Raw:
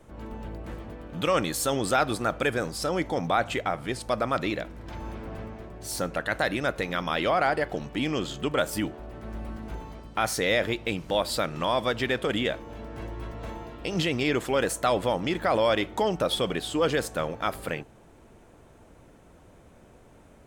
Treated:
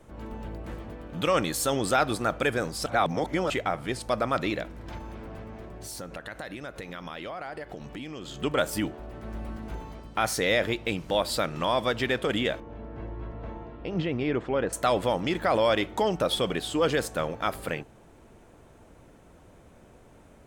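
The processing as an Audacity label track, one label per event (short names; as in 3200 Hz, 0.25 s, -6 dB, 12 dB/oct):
2.860000	3.500000	reverse
4.980000	8.410000	compressor 4:1, threshold -36 dBFS
12.600000	14.730000	tape spacing loss at 10 kHz 33 dB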